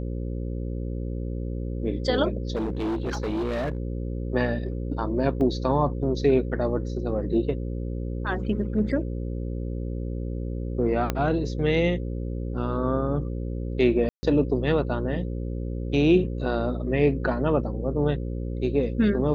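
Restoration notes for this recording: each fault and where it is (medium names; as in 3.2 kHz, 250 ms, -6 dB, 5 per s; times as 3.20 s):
buzz 60 Hz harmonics 9 -30 dBFS
2.55–3.78 s: clipped -24 dBFS
5.41 s: dropout 2.3 ms
11.10 s: pop -10 dBFS
14.09–14.23 s: dropout 140 ms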